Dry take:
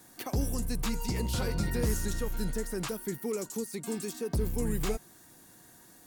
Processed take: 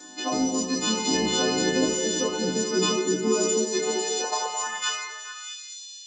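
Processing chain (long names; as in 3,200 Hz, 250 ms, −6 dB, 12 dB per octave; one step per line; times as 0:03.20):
every partial snapped to a pitch grid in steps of 3 semitones
0:00.86–0:01.30: transient designer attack −11 dB, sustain +7 dB
0:02.44–0:03.42: comb filter 0.8 ms, depth 42%
0:04.24–0:04.67: low shelf with overshoot 610 Hz −11 dB, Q 1.5
brickwall limiter −23.5 dBFS, peak gain reduction 10.5 dB
automatic gain control gain up to 3 dB
high-pass filter sweep 310 Hz → 3,700 Hz, 0:03.54–0:05.63
echo through a band-pass that steps 214 ms, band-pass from 490 Hz, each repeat 1.4 octaves, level −5 dB
convolution reverb, pre-delay 3 ms, DRR −1.5 dB
level +5.5 dB
G.722 64 kbit/s 16,000 Hz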